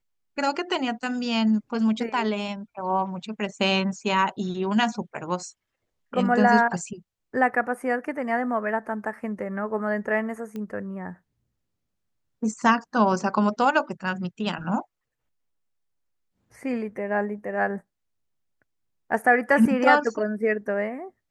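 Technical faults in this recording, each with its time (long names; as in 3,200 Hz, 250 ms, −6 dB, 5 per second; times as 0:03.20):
0:10.56: click −23 dBFS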